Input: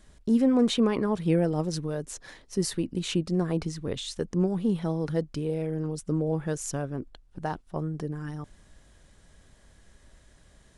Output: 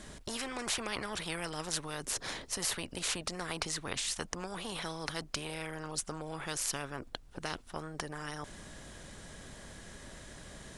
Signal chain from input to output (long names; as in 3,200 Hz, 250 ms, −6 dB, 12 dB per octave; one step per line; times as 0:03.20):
every bin compressed towards the loudest bin 4 to 1